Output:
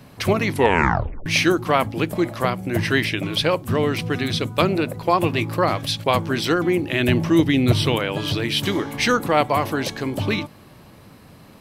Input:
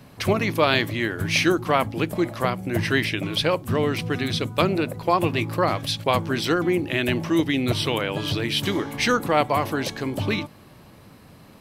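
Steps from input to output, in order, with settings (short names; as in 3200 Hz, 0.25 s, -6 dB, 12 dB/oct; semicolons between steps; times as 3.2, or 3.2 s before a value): 0.48 tape stop 0.78 s; 7–7.96 low shelf 230 Hz +7.5 dB; gain +2 dB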